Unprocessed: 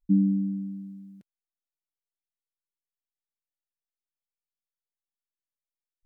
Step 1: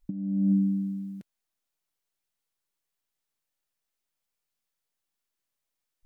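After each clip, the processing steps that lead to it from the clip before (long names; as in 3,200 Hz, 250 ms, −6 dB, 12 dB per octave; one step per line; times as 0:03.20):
in parallel at −0.5 dB: brickwall limiter −24.5 dBFS, peak gain reduction 11 dB
on the sum: compressor whose output falls as the input rises −24 dBFS, ratio −0.5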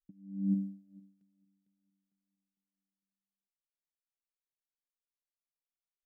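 on a send: repeating echo 453 ms, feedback 44%, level −6 dB
on the sum: expander for the loud parts 2.5 to 1, over −39 dBFS
level −5 dB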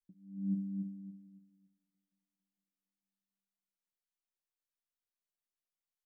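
tuned comb filter 180 Hz, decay 0.18 s, harmonics all, mix 80%
on a send: repeating echo 281 ms, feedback 30%, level −5 dB
on the sum: level +2.5 dB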